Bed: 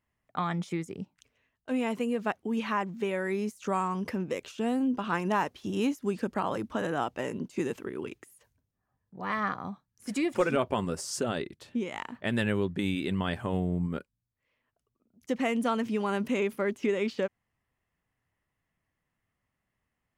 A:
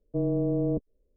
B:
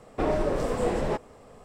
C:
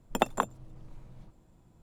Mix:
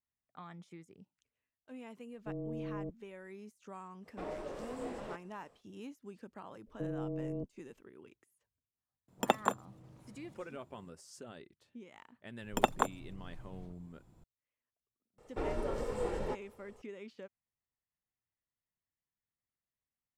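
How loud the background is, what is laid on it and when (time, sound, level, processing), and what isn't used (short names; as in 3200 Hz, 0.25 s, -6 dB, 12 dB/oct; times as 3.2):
bed -19 dB
2.12 add A -14 dB
3.99 add B -14.5 dB, fades 0.10 s + low shelf 210 Hz -9 dB
6.66 add A -12 dB + three-band squash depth 70%
9.08 add C -2.5 dB + HPF 110 Hz
12.42 add C -2 dB
15.18 add B -11.5 dB + comb 2.2 ms, depth 49%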